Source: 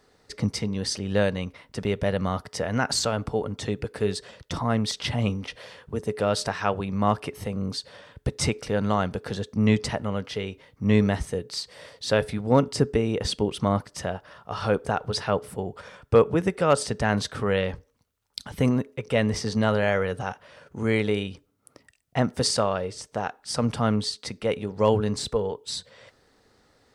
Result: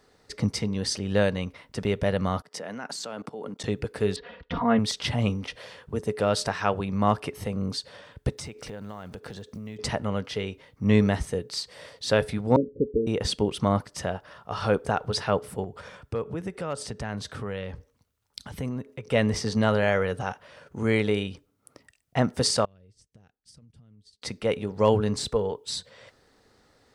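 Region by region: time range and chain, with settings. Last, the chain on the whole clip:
2.42–3.64 s: high-pass 170 Hz 24 dB/octave + level held to a coarse grid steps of 18 dB
4.16–4.79 s: low-pass 3.1 kHz 24 dB/octave + comb 4.2 ms, depth 85%
8.31–9.79 s: block-companded coder 7-bit + compression 8:1, threshold -35 dBFS
12.56–13.07 s: Chebyshev low-pass 540 Hz, order 8 + peaking EQ 120 Hz -13.5 dB 0.94 oct
15.64–19.12 s: high-pass 49 Hz + bass shelf 130 Hz +6 dB + compression 2:1, threshold -37 dBFS
22.65–24.22 s: amplifier tone stack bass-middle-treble 10-0-1 + compression 12:1, threshold -51 dBFS + transient shaper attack +4 dB, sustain -8 dB
whole clip: none

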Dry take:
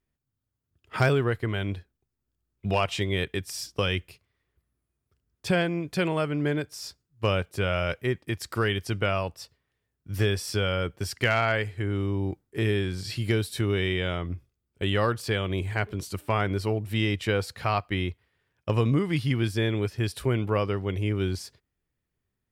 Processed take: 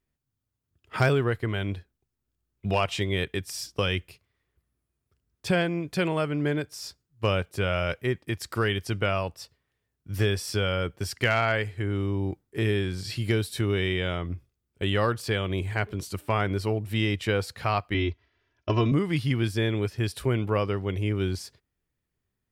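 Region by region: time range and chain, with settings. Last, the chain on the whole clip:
17.94–18.92 s: steep low-pass 6.6 kHz 96 dB/octave + comb 3 ms, depth 92%
whole clip: none

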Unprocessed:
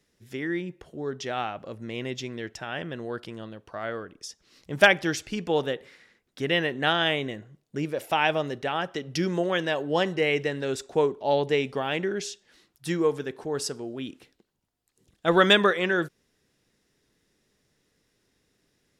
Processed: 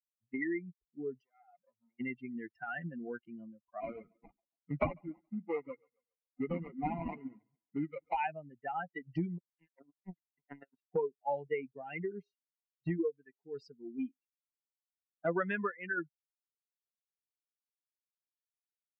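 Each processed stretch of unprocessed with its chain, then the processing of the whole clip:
1.21–2.00 s: bass shelf 340 Hz -5 dB + compression 16:1, threshold -35 dBFS + transformer saturation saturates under 2.2 kHz
3.80–8.17 s: de-esser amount 25% + sample-rate reducer 1.7 kHz, jitter 20% + two-band feedback delay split 370 Hz, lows 92 ms, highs 138 ms, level -11.5 dB
9.38–10.93 s: compressor with a negative ratio -30 dBFS, ratio -0.5 + power-law waveshaper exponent 3
whole clip: expander on every frequency bin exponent 3; Chebyshev low-pass 2.5 kHz, order 5; three bands compressed up and down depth 100%

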